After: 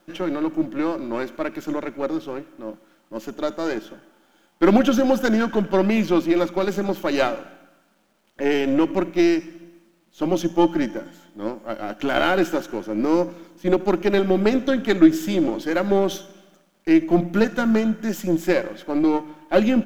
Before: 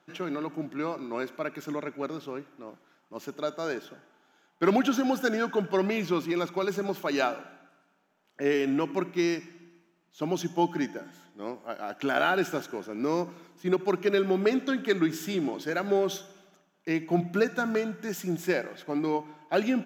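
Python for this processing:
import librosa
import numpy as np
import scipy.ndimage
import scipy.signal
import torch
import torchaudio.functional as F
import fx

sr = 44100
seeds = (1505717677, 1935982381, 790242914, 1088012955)

y = np.where(x < 0.0, 10.0 ** (-7.0 / 20.0) * x, x)
y = fx.small_body(y, sr, hz=(220.0, 320.0, 540.0, 3100.0), ring_ms=95, db=11)
y = fx.quant_dither(y, sr, seeds[0], bits=12, dither='none')
y = y * librosa.db_to_amplitude(6.0)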